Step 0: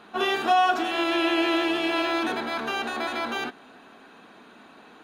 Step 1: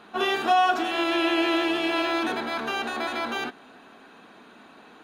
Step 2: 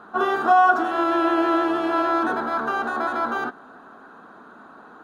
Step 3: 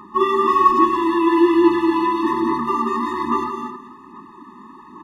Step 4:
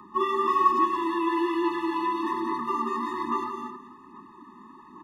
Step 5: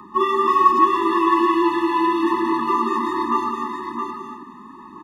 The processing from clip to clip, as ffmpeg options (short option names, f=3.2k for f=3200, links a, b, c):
-af anull
-af "highshelf=f=1.8k:t=q:w=3:g=-9,volume=2.5dB"
-af "aecho=1:1:177|264|437:0.562|0.376|0.112,aphaser=in_gain=1:out_gain=1:delay=5:decay=0.39:speed=1.2:type=sinusoidal,afftfilt=real='re*eq(mod(floor(b*sr/1024/420),2),0)':imag='im*eq(mod(floor(b*sr/1024/420),2),0)':win_size=1024:overlap=0.75,volume=5dB"
-filter_complex "[0:a]acrossover=split=170|450|2900[a][b][c][d];[a]acompressor=threshold=-48dB:ratio=6[e];[b]alimiter=limit=-20dB:level=0:latency=1:release=454[f];[e][f][c][d]amix=inputs=4:normalize=0,volume=-7dB"
-af "aecho=1:1:667:0.531,volume=6.5dB"